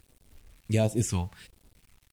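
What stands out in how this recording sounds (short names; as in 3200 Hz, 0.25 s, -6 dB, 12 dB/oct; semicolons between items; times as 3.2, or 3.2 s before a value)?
phasing stages 2, 1.4 Hz, lowest notch 350–1600 Hz; a quantiser's noise floor 10-bit, dither none; Vorbis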